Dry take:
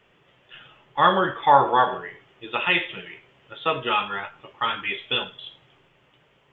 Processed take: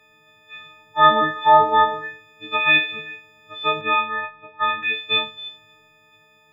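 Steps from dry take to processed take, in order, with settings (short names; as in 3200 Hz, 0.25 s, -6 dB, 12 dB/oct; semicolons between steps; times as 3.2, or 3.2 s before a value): frequency quantiser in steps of 6 st; 3.81–4.83 LPF 3000 Hz 24 dB/oct; gain -1.5 dB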